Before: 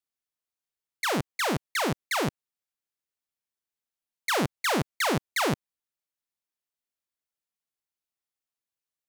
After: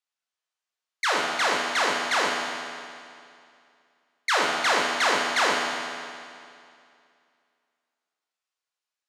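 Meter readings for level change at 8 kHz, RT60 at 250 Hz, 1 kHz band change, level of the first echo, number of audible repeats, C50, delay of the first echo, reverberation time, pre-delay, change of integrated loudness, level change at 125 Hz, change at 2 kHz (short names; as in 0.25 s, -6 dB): +3.0 dB, 2.4 s, +6.0 dB, none, none, 0.5 dB, none, 2.4 s, 12 ms, +4.0 dB, -17.0 dB, +7.0 dB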